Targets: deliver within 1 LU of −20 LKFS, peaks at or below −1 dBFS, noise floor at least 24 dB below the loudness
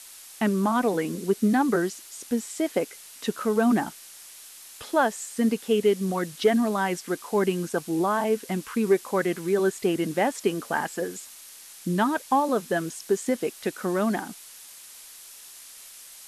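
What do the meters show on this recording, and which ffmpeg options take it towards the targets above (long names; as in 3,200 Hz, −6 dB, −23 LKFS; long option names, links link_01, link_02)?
background noise floor −46 dBFS; target noise floor −50 dBFS; integrated loudness −26.0 LKFS; sample peak −10.0 dBFS; target loudness −20.0 LKFS
→ -af "afftdn=noise_reduction=6:noise_floor=-46"
-af "volume=6dB"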